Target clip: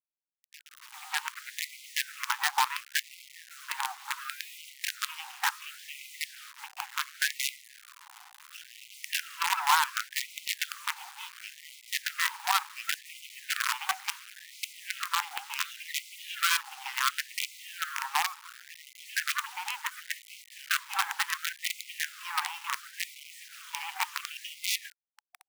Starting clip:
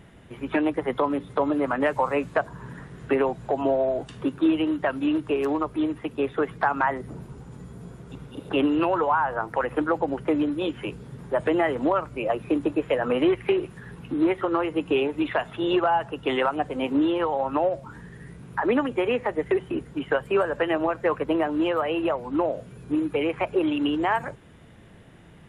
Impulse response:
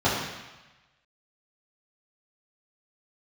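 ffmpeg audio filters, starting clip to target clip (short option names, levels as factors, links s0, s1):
-filter_complex "[0:a]acrossover=split=380|3500[s0][s1][s2];[s0]adelay=400[s3];[s1]adelay=590[s4];[s3][s4][s2]amix=inputs=3:normalize=0,acrusher=bits=4:dc=4:mix=0:aa=0.000001,afftfilt=real='re*gte(b*sr/1024,730*pow(2000/730,0.5+0.5*sin(2*PI*0.7*pts/sr)))':imag='im*gte(b*sr/1024,730*pow(2000/730,0.5+0.5*sin(2*PI*0.7*pts/sr)))':win_size=1024:overlap=0.75"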